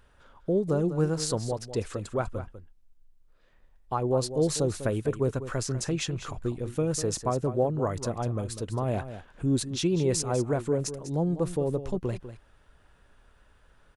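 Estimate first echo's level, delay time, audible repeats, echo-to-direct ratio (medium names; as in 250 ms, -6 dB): -12.0 dB, 198 ms, 1, -12.0 dB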